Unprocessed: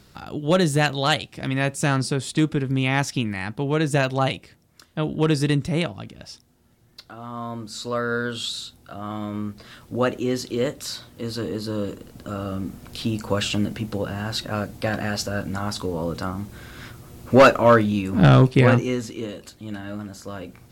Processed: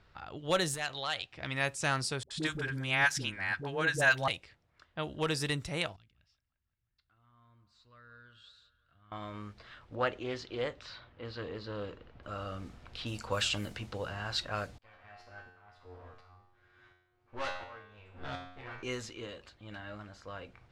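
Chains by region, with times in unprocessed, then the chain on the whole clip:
0.74–1.32 s: hard clipper -12 dBFS + compression 4:1, threshold -22 dBFS + bass shelf 470 Hz -6 dB
2.23–4.28 s: peaking EQ 1.6 kHz +11 dB 0.24 oct + hum notches 50/100/150/200/250/300/350/400 Hz + phase dispersion highs, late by 76 ms, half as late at 500 Hz
5.96–9.12 s: amplifier tone stack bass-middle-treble 6-0-2 + feedback echo behind a band-pass 174 ms, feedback 65%, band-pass 1.1 kHz, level -13 dB
9.95–12.23 s: low-pass 3.3 kHz + loudspeaker Doppler distortion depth 0.15 ms
14.78–18.83 s: comb filter that takes the minimum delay 8.5 ms + tremolo saw up 1.4 Hz, depth 90% + feedback comb 90 Hz, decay 0.75 s, mix 90%
whole clip: level-controlled noise filter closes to 2.2 kHz, open at -17.5 dBFS; peaking EQ 220 Hz -14 dB 2.1 oct; trim -4.5 dB

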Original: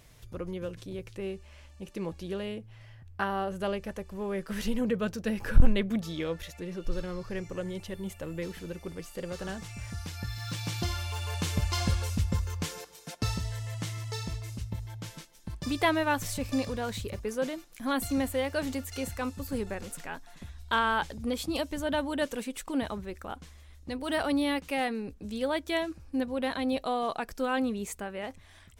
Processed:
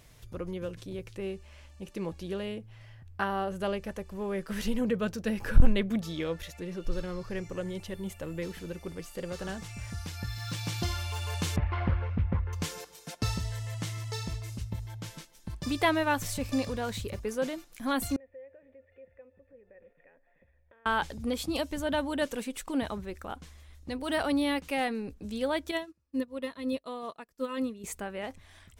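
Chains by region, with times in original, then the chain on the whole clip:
11.56–12.53 s: low-pass 2.2 kHz 24 dB/octave + loudspeaker Doppler distortion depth 0.33 ms
18.16–20.86 s: compression, threshold -42 dBFS + cascade formant filter e + feedback echo behind a band-pass 141 ms, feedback 75%, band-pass 850 Hz, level -21 dB
25.71–27.84 s: treble shelf 11 kHz +4 dB + comb of notches 770 Hz + upward expansion 2.5:1, over -43 dBFS
whole clip: none

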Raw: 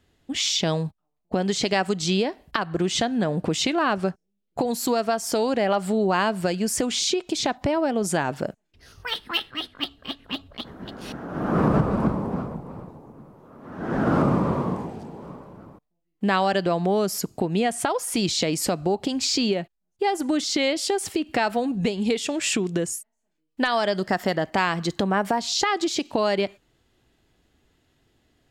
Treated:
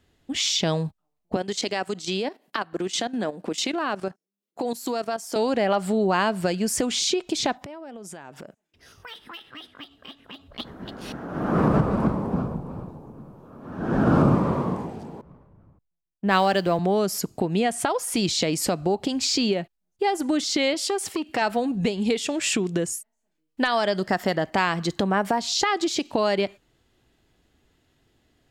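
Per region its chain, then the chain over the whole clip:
1.36–5.36 s: high-pass 210 Hz 24 dB/octave + treble shelf 6.3 kHz +3.5 dB + level held to a coarse grid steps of 13 dB
7.57–10.48 s: high-pass 160 Hz 6 dB/octave + band-stop 4.3 kHz, Q 10 + compression 5:1, threshold -38 dBFS
12.32–14.35 s: bass shelf 230 Hz +5.5 dB + band-stop 2 kHz, Q 8 + flutter echo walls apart 11.3 m, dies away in 0.23 s
15.21–16.79 s: companding laws mixed up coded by mu + three bands expanded up and down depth 100%
20.74–21.42 s: bass shelf 130 Hz -10.5 dB + transformer saturation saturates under 920 Hz
whole clip: none

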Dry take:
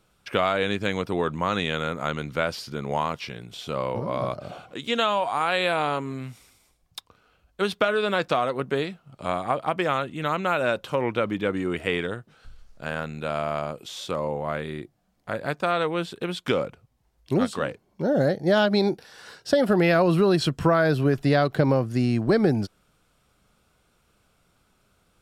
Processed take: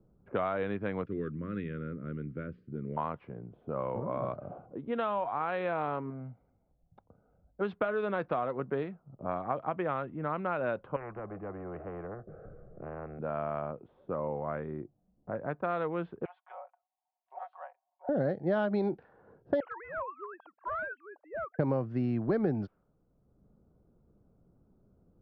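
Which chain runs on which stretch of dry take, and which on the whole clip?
1.05–2.97 s: Butterworth band-stop 810 Hz, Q 0.59 + hum notches 60/120/180/240 Hz
6.10–7.61 s: bass shelf 170 Hz -7 dB + comb 1.4 ms, depth 54%
10.96–13.19 s: tape spacing loss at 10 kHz 36 dB + static phaser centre 930 Hz, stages 6 + spectrum-flattening compressor 4:1
16.25–18.09 s: Chebyshev high-pass 690 Hz, order 6 + peaking EQ 1.3 kHz -6.5 dB 0.73 oct + comb 5.4 ms, depth 75%
19.60–21.59 s: formants replaced by sine waves + high-pass 870 Hz 24 dB/octave + hard clipper -24.5 dBFS
whole clip: low-pass 1.5 kHz 12 dB/octave; level-controlled noise filter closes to 370 Hz, open at -18 dBFS; three bands compressed up and down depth 40%; trim -7 dB

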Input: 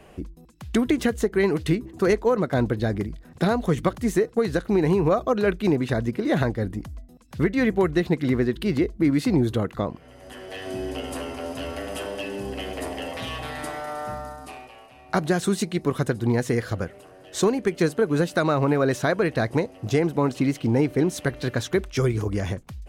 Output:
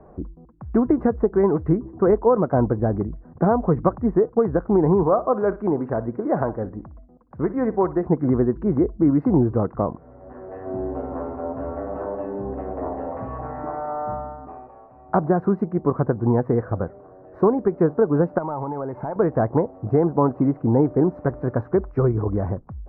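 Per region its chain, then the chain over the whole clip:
5.03–8.05 s: bass shelf 260 Hz -9 dB + feedback delay 60 ms, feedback 32%, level -16.5 dB
18.38–19.16 s: one-bit delta coder 64 kbps, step -36 dBFS + small resonant body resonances 880/2100 Hz, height 14 dB, ringing for 35 ms + compression 16:1, threshold -27 dBFS
whole clip: inverse Chebyshev low-pass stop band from 3.1 kHz, stop band 50 dB; dynamic bell 890 Hz, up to +4 dB, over -37 dBFS, Q 1.2; trim +2.5 dB

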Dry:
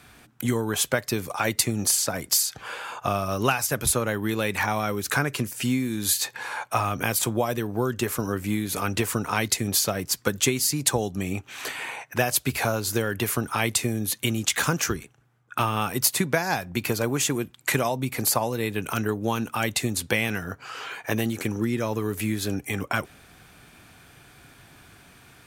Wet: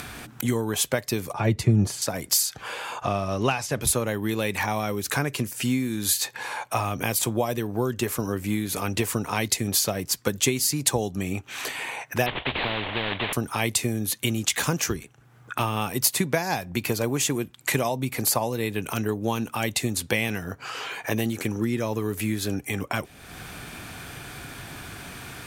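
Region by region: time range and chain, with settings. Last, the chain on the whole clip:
1.33–2.02 s: high-pass 78 Hz + RIAA curve playback + comb of notches 260 Hz
3.02–3.82 s: companding laws mixed up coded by mu + distance through air 68 m
12.26–13.33 s: CVSD coder 16 kbps + spectrum-flattening compressor 4:1
whole clip: dynamic bell 1.4 kHz, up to -6 dB, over -42 dBFS, Q 2.8; upward compressor, threshold -27 dBFS

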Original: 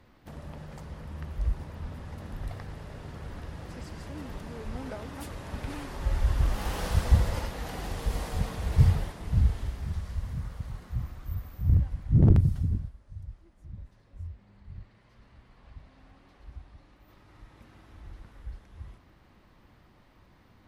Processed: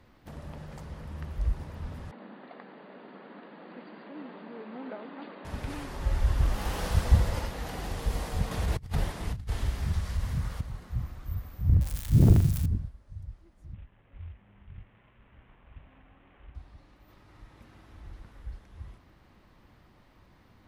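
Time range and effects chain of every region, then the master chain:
2.11–5.45 s: brick-wall FIR band-pass 180–4800 Hz + distance through air 260 m
8.51–10.61 s: compressor with a negative ratio -28 dBFS, ratio -0.5 + tape noise reduction on one side only encoder only
11.81–12.66 s: zero-crossing glitches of -24.5 dBFS + flutter echo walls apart 7 m, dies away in 0.28 s
13.74–16.55 s: CVSD coder 16 kbps + tremolo saw up 2.2 Hz, depth 30%
whole clip: none

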